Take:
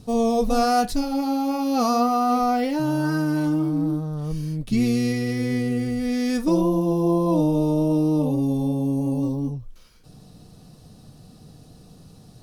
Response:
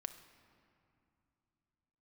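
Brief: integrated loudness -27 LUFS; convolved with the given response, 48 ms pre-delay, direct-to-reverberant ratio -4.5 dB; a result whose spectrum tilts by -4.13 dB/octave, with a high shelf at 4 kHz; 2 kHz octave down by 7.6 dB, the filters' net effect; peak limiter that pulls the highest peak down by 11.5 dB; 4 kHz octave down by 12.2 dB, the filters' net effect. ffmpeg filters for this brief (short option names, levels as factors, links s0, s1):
-filter_complex "[0:a]equalizer=f=2000:t=o:g=-7,highshelf=f=4000:g=-8.5,equalizer=f=4000:t=o:g=-8.5,alimiter=limit=0.0841:level=0:latency=1,asplit=2[s0][s1];[1:a]atrim=start_sample=2205,adelay=48[s2];[s1][s2]afir=irnorm=-1:irlink=0,volume=2.37[s3];[s0][s3]amix=inputs=2:normalize=0,volume=0.562"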